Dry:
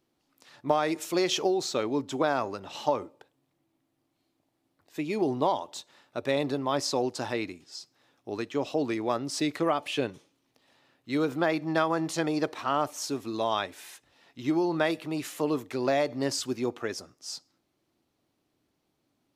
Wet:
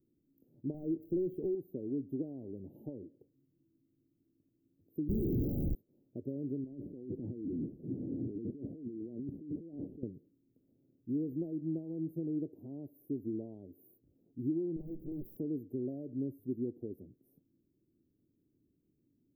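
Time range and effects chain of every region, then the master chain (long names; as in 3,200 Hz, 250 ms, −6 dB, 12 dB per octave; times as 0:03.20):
0:00.74–0:01.55: high-frequency loss of the air 160 metres + leveller curve on the samples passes 2
0:05.08–0:05.75: flutter between parallel walls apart 7 metres, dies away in 0.88 s + comparator with hysteresis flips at −26.5 dBFS
0:06.64–0:10.03: linear delta modulator 64 kbit/s, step −30.5 dBFS + resonant band-pass 240 Hz, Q 0.75 + compressor whose output falls as the input rises −41 dBFS
0:14.76–0:15.37: lower of the sound and its delayed copy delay 5.5 ms + downward compressor 5 to 1, threshold −31 dBFS + highs frequency-modulated by the lows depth 0.59 ms
whole clip: downward compressor 2.5 to 1, threshold −36 dBFS; inverse Chebyshev band-stop filter 1,100–7,800 Hz, stop band 60 dB; level +2.5 dB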